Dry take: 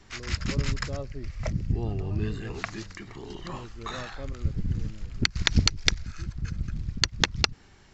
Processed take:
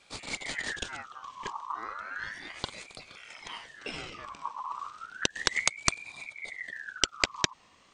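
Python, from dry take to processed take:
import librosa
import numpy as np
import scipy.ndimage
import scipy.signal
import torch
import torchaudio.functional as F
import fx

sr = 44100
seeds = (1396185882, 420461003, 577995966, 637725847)

y = fx.low_shelf_res(x, sr, hz=600.0, db=-7.5, q=1.5)
y = fx.ring_lfo(y, sr, carrier_hz=1700.0, swing_pct=40, hz=0.33)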